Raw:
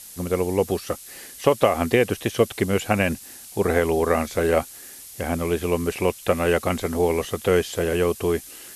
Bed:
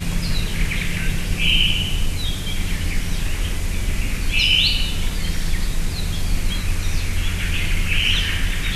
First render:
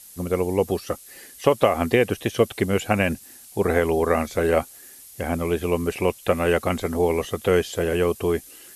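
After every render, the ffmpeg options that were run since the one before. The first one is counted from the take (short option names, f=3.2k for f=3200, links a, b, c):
-af "afftdn=nr=6:nf=-42"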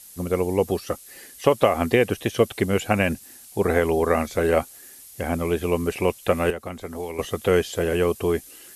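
-filter_complex "[0:a]asettb=1/sr,asplit=3[a][b][c];[a]atrim=end=6.504[d];[b]atrim=start=6.5:end=7.19,asetpts=PTS-STARTPTS,afade=t=in:d=0.004:c=qsin,afade=t=out:st=0.686:d=0.004:c=qsin,acrossover=split=430|1200[e][f][g];[e]acompressor=threshold=-36dB:ratio=4[h];[f]acompressor=threshold=-36dB:ratio=4[i];[g]acompressor=threshold=-42dB:ratio=4[j];[h][i][j]amix=inputs=3:normalize=0[k];[c]atrim=start=7.186[l];[d][k]acrossfade=d=0.004:c1=hsin:c2=qsin[m];[m][l]acrossfade=d=0.004:c1=qsin:c2=hsin"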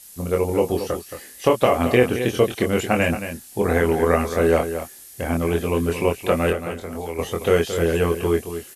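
-filter_complex "[0:a]asplit=2[a][b];[b]adelay=24,volume=-3.5dB[c];[a][c]amix=inputs=2:normalize=0,asplit=2[d][e];[e]aecho=0:1:223:0.316[f];[d][f]amix=inputs=2:normalize=0"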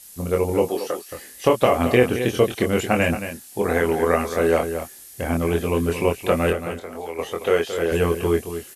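-filter_complex "[0:a]asettb=1/sr,asplit=3[a][b][c];[a]atrim=end=0.694[d];[b]atrim=start=0.69:end=1.12,asetpts=PTS-STARTPTS,afade=t=in:d=0.004:c=qsin,afade=t=out:st=0.426:d=0.004:c=qsin,highpass=330[e];[c]atrim=start=1.116[f];[d][e]acrossfade=d=0.004:c1=hsin:c2=qsin[g];[g][f]acrossfade=d=0.004:c1=qsin:c2=hsin,asettb=1/sr,asplit=3[h][i][j];[h]atrim=end=3.294[k];[i]atrim=start=3.29:end=4.63,asetpts=PTS-STARTPTS,afade=t=in:d=0.004:c=qsin,afade=t=out:st=1.336:d=0.004:c=qsin,lowshelf=f=180:g=-7[l];[j]atrim=start=4.626[m];[k][l]acrossfade=d=0.004:c1=hsin:c2=qsin[n];[n][m]acrossfade=d=0.004:c1=qsin:c2=hsin,asettb=1/sr,asplit=3[o][p][q];[o]atrim=end=6.794[r];[p]atrim=start=6.79:end=7.92,asetpts=PTS-STARTPTS,afade=t=in:d=0.004:c=qsin,afade=t=out:st=1.126:d=0.004:c=qsin,bass=f=250:g=-12,treble=f=4k:g=-5[s];[q]atrim=start=7.916[t];[r][s]acrossfade=d=0.004:c1=hsin:c2=qsin[u];[u][t]acrossfade=d=0.004:c1=qsin:c2=hsin"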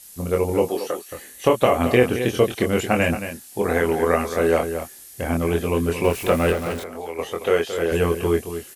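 -filter_complex "[0:a]asettb=1/sr,asplit=3[a][b][c];[a]atrim=end=0.864[d];[b]atrim=start=0.86:end=1.84,asetpts=PTS-STARTPTS,afade=t=in:d=0.004:c=qsin,afade=t=out:st=0.976:d=0.004:c=qsin,bandreject=f=5k:w=6.1[e];[c]atrim=start=1.836[f];[d][e]acrossfade=d=0.004:c1=hsin:c2=qsin[g];[g][f]acrossfade=d=0.004:c1=qsin:c2=hsin,asettb=1/sr,asplit=3[h][i][j];[h]atrim=end=6.044[k];[i]atrim=start=6.04:end=6.84,asetpts=PTS-STARTPTS,afade=t=in:d=0.004:c=qsin,afade=t=out:st=0.796:d=0.004:c=qsin,aeval=exprs='val(0)+0.5*0.0316*sgn(val(0))':c=same[l];[j]atrim=start=6.836[m];[k][l]acrossfade=d=0.004:c1=hsin:c2=qsin[n];[n][m]acrossfade=d=0.004:c1=qsin:c2=hsin"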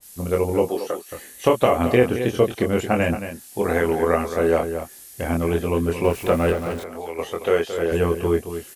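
-af "adynamicequalizer=threshold=0.0178:dfrequency=1600:dqfactor=0.7:tfrequency=1600:tqfactor=0.7:attack=5:release=100:ratio=0.375:range=2.5:mode=cutabove:tftype=highshelf"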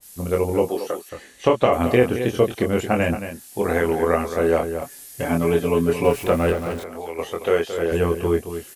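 -filter_complex "[0:a]asettb=1/sr,asplit=3[a][b][c];[a]atrim=end=1.094[d];[b]atrim=start=1.09:end=1.73,asetpts=PTS-STARTPTS,afade=t=in:d=0.004:c=qsin,afade=t=out:st=0.636:d=0.004:c=qsin,lowpass=5.8k[e];[c]atrim=start=1.726[f];[d][e]acrossfade=d=0.004:c1=hsin:c2=qsin[g];[g][f]acrossfade=d=0.004:c1=qsin:c2=hsin,asettb=1/sr,asplit=3[h][i][j];[h]atrim=end=4.814[k];[i]atrim=start=4.81:end=6.24,asetpts=PTS-STARTPTS,afade=t=in:d=0.004:c=qsin,afade=t=out:st=1.426:d=0.004:c=qsin,aecho=1:1:7:0.76,atrim=end_sample=63063[l];[j]atrim=start=6.236[m];[k][l]acrossfade=d=0.004:c1=hsin:c2=qsin[n];[n][m]acrossfade=d=0.004:c1=qsin:c2=hsin"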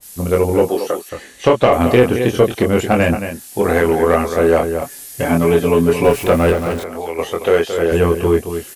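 -af "acontrast=80"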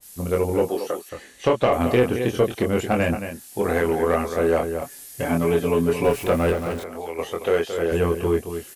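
-af "volume=-7dB"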